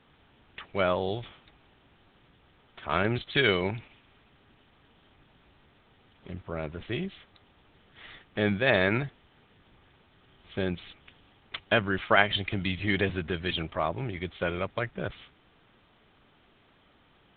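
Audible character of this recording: A-law

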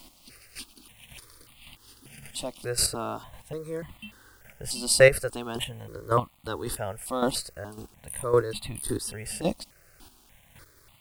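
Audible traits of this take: chopped level 1.8 Hz, depth 65%, duty 15%; a quantiser's noise floor 10-bit, dither none; notches that jump at a steady rate 3.4 Hz 440–1600 Hz

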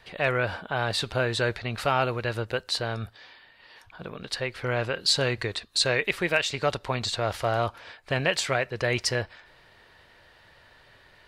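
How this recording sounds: noise floor -57 dBFS; spectral tilt -3.5 dB/octave

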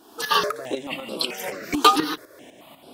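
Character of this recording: tremolo saw up 4 Hz, depth 65%; notches that jump at a steady rate 4.6 Hz 560–6500 Hz

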